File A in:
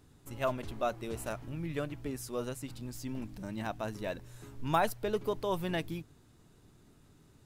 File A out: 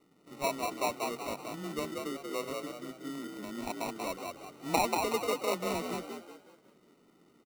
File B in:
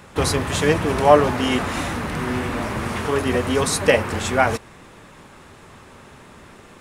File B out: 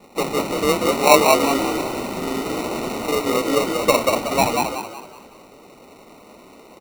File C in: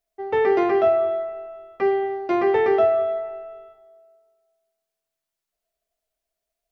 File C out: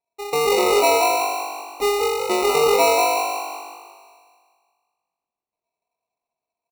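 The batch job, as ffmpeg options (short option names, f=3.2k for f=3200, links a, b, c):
-filter_complex "[0:a]lowpass=f=1.4k:w=0.5412,lowpass=f=1.4k:w=1.3066,afreqshift=17,highpass=f=200:w=0.5412,highpass=f=200:w=1.3066,bandreject=f=258.6:t=h:w=4,bandreject=f=517.2:t=h:w=4,acrusher=samples=27:mix=1:aa=0.000001,asplit=2[a][b];[b]asplit=5[c][d][e][f][g];[c]adelay=186,afreqshift=49,volume=-3.5dB[h];[d]adelay=372,afreqshift=98,volume=-11.7dB[i];[e]adelay=558,afreqshift=147,volume=-19.9dB[j];[f]adelay=744,afreqshift=196,volume=-28dB[k];[g]adelay=930,afreqshift=245,volume=-36.2dB[l];[h][i][j][k][l]amix=inputs=5:normalize=0[m];[a][m]amix=inputs=2:normalize=0"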